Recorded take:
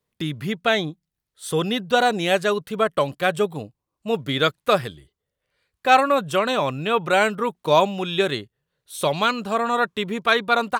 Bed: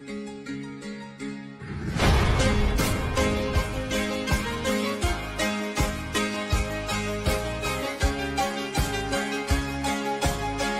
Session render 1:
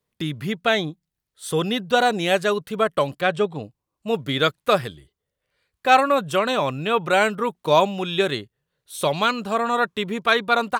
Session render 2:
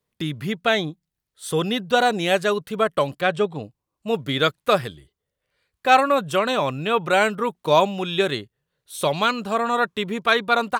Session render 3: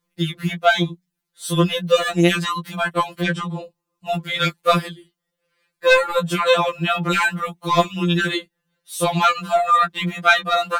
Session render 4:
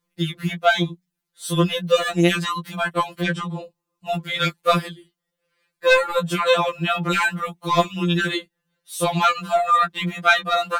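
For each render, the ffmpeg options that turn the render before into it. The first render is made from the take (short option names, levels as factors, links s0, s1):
-filter_complex "[0:a]asettb=1/sr,asplit=3[s0][s1][s2];[s0]atrim=end=3.214[s3];[s1]atrim=start=3.21:end=3.63,asetpts=PTS-STARTPTS,afade=t=in:d=0.004:c=qsin,afade=t=out:st=0.416:d=0.004:c=qsin,lowpass=5400[s4];[s2]atrim=start=3.626[s5];[s3][s4]acrossfade=d=0.004:c1=hsin:c2=qsin[s6];[s6][s5]acrossfade=d=0.004:c1=qsin:c2=hsin"
-af anull
-filter_complex "[0:a]asplit=2[s0][s1];[s1]aeval=exprs='0.75*sin(PI/2*2*val(0)/0.75)':c=same,volume=0.335[s2];[s0][s2]amix=inputs=2:normalize=0,afftfilt=real='re*2.83*eq(mod(b,8),0)':imag='im*2.83*eq(mod(b,8),0)':win_size=2048:overlap=0.75"
-af "volume=0.841"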